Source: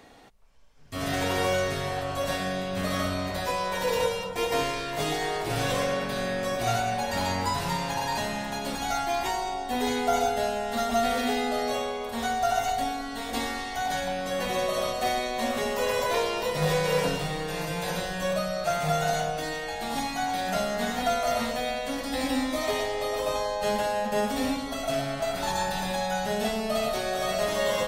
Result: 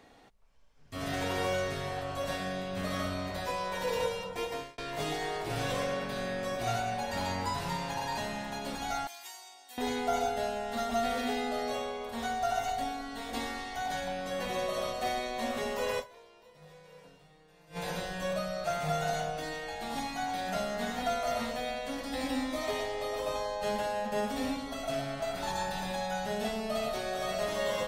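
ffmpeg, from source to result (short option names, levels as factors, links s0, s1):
-filter_complex "[0:a]asettb=1/sr,asplit=3[s0][s1][s2];[s0]atrim=end=9.074[s3];[s1]atrim=start=9.07:end=9.78,asetpts=PTS-STARTPTS,afade=t=in:d=0.004:c=qsin,afade=t=out:st=0.706:d=0.004:c=qsin,aderivative[s4];[s2]atrim=start=9.776[s5];[s3][s4]acrossfade=d=0.004:c1=hsin:c2=qsin[s6];[s6][s5]acrossfade=d=0.004:c1=qsin:c2=hsin,asplit=4[s7][s8][s9][s10];[s7]atrim=end=4.78,asetpts=PTS-STARTPTS,afade=t=out:st=4.35:d=0.43[s11];[s8]atrim=start=4.78:end=16.25,asetpts=PTS-STARTPTS,afade=t=in:d=0.004:c=hsin,afade=t=out:st=11.21:d=0.26:c=exp:silence=0.0668344[s12];[s9]atrim=start=16.25:end=17.51,asetpts=PTS-STARTPTS,volume=0.0668[s13];[s10]atrim=start=17.51,asetpts=PTS-STARTPTS,afade=t=in:d=0.26:c=exp:silence=0.0668344[s14];[s11][s12][s13][s14]concat=n=4:v=0:a=1,highshelf=f=7300:g=-4,volume=0.531"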